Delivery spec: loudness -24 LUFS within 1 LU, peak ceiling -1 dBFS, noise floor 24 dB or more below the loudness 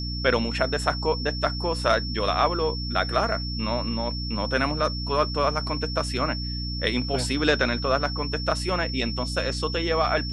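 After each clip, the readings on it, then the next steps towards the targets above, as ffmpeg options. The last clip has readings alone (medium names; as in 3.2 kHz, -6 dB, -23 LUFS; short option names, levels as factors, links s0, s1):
hum 60 Hz; highest harmonic 300 Hz; hum level -28 dBFS; steady tone 5.4 kHz; tone level -33 dBFS; loudness -25.0 LUFS; peak level -6.0 dBFS; loudness target -24.0 LUFS
-> -af "bandreject=f=60:t=h:w=6,bandreject=f=120:t=h:w=6,bandreject=f=180:t=h:w=6,bandreject=f=240:t=h:w=6,bandreject=f=300:t=h:w=6"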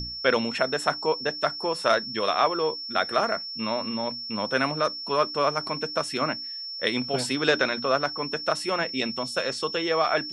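hum not found; steady tone 5.4 kHz; tone level -33 dBFS
-> -af "bandreject=f=5400:w=30"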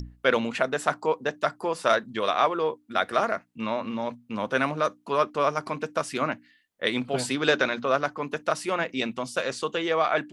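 steady tone not found; loudness -27.0 LUFS; peak level -6.5 dBFS; loudness target -24.0 LUFS
-> -af "volume=1.41"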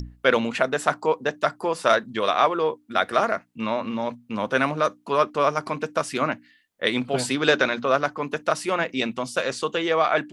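loudness -24.0 LUFS; peak level -3.5 dBFS; noise floor -59 dBFS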